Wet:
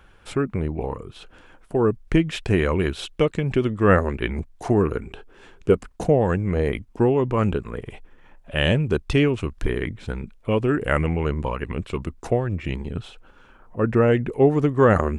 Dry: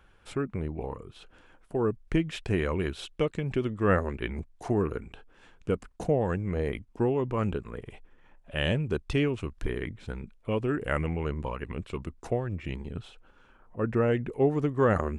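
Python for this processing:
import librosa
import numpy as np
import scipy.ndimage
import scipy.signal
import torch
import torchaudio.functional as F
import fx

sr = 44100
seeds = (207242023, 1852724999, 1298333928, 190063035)

y = fx.peak_eq(x, sr, hz=390.0, db=10.0, octaves=0.3, at=(5.04, 5.73))
y = y * librosa.db_to_amplitude(7.5)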